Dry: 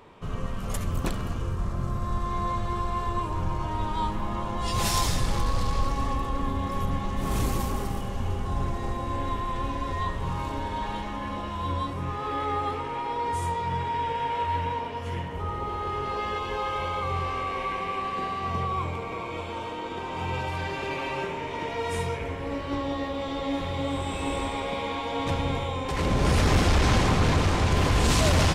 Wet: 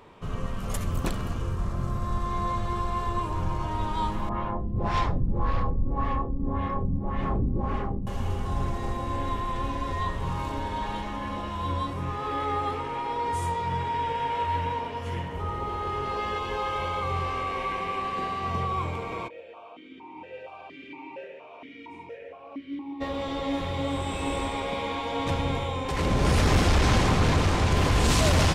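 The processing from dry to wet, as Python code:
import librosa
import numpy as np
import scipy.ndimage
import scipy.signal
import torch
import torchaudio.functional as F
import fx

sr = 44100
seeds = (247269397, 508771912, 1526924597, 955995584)

y = fx.filter_lfo_lowpass(x, sr, shape='sine', hz=1.8, low_hz=220.0, high_hz=2400.0, q=1.3, at=(4.29, 8.07))
y = fx.vowel_held(y, sr, hz=4.3, at=(19.27, 23.0), fade=0.02)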